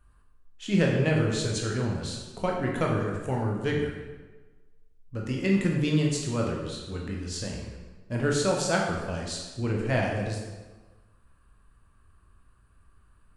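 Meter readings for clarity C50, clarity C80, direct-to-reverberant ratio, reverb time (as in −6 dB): 2.5 dB, 4.5 dB, −1.5 dB, 1.3 s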